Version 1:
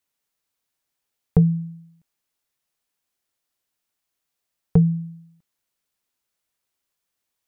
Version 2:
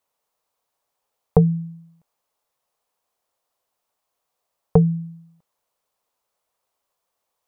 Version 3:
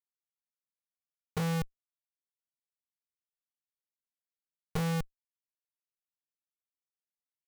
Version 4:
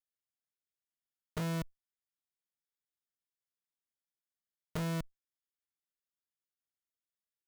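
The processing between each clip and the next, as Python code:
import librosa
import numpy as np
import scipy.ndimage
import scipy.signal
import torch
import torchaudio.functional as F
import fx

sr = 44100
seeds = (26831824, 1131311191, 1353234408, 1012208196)

y1 = fx.band_shelf(x, sr, hz=730.0, db=11.0, octaves=1.7)
y2 = fx.diode_clip(y1, sr, knee_db=-6.0)
y2 = fx.schmitt(y2, sr, flips_db=-27.0)
y2 = y2 * librosa.db_to_amplitude(-1.0)
y3 = fx.lower_of_two(y2, sr, delay_ms=0.6)
y3 = y3 * librosa.db_to_amplitude(-4.0)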